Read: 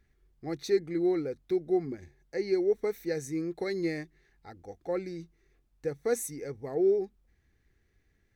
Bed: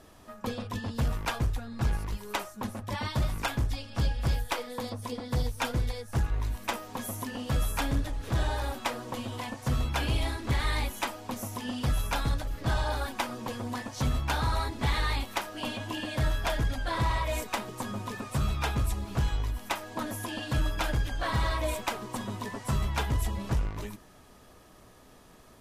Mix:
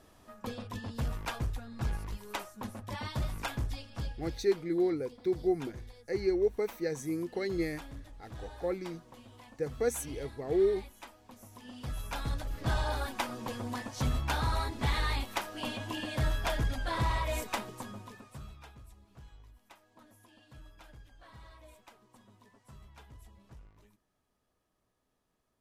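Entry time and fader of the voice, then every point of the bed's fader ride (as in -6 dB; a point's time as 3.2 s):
3.75 s, -1.5 dB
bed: 3.8 s -5.5 dB
4.45 s -17.5 dB
11.37 s -17.5 dB
12.55 s -2.5 dB
17.57 s -2.5 dB
18.8 s -25 dB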